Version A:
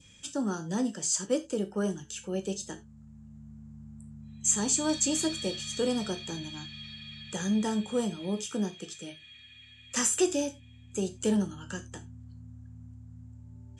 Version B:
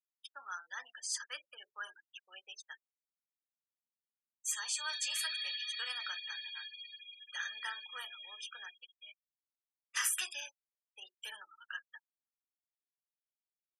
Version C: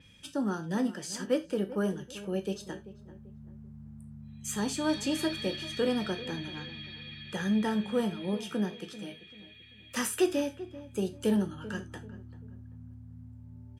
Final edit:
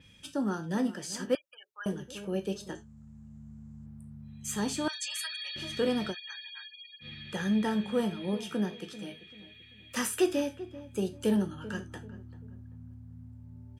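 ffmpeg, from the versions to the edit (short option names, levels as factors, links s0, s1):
-filter_complex "[1:a]asplit=3[s0][s1][s2];[2:a]asplit=5[s3][s4][s5][s6][s7];[s3]atrim=end=1.352[s8];[s0]atrim=start=1.348:end=1.862[s9];[s4]atrim=start=1.858:end=2.752[s10];[0:a]atrim=start=2.748:end=3.862[s11];[s5]atrim=start=3.858:end=4.882[s12];[s1]atrim=start=4.878:end=5.562[s13];[s6]atrim=start=5.558:end=6.15[s14];[s2]atrim=start=6.09:end=7.06[s15];[s7]atrim=start=7[s16];[s8][s9]acrossfade=d=0.004:c1=hsin:c2=hsin[s17];[s17][s10]acrossfade=d=0.004:c1=hsin:c2=hsin[s18];[s18][s11]acrossfade=d=0.004:c1=hsin:c2=hsin[s19];[s19][s12]acrossfade=d=0.004:c1=hsin:c2=hsin[s20];[s20][s13]acrossfade=d=0.004:c1=hsin:c2=hsin[s21];[s21][s14]acrossfade=d=0.004:c1=hsin:c2=hsin[s22];[s22][s15]acrossfade=d=0.06:c1=tri:c2=tri[s23];[s23][s16]acrossfade=d=0.06:c1=tri:c2=tri"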